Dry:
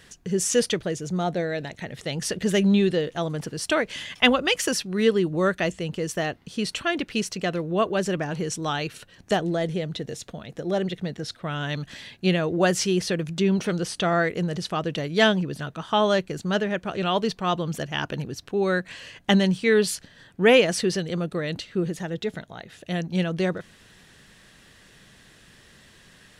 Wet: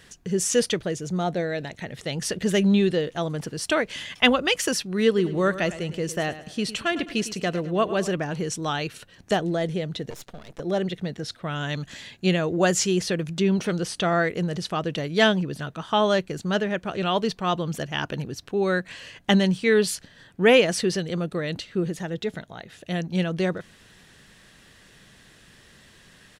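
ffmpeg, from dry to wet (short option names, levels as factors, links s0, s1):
-filter_complex "[0:a]asplit=3[s0][s1][s2];[s0]afade=t=out:st=5.17:d=0.02[s3];[s1]aecho=1:1:106|212|318|424:0.2|0.0798|0.0319|0.0128,afade=t=in:st=5.17:d=0.02,afade=t=out:st=8.12:d=0.02[s4];[s2]afade=t=in:st=8.12:d=0.02[s5];[s3][s4][s5]amix=inputs=3:normalize=0,asettb=1/sr,asplit=3[s6][s7][s8];[s6]atrim=end=10.104[s9];[s7]atrim=start=10.1:end=10.6,asetpts=PTS-STARTPTS,afade=t=in:d=0.004:c=qsin,afade=t=out:st=0.496:d=0.004:c=qsin,aeval=exprs='max(val(0),0)':c=same[s10];[s8]atrim=start=10.596[s11];[s9][s10]acrossfade=d=0.004:c1=hsin:c2=qsin[s12];[s12][s11]acrossfade=d=0.004:c1=qsin:c2=hsin,asettb=1/sr,asplit=3[s13][s14][s15];[s13]atrim=end=11.554[s16];[s14]atrim=start=11.55:end=13.03,asetpts=PTS-STARTPTS,afade=t=in:d=0.004:c=qsin,afade=t=out:st=1.476:d=0.004:c=qsin,equalizer=f=7000:w=7.6:g=10.5[s17];[s15]atrim=start=13.026[s18];[s16][s17]acrossfade=d=0.004:c1=hsin:c2=qsin[s19];[s19][s18]acrossfade=d=0.004:c1=qsin:c2=hsin"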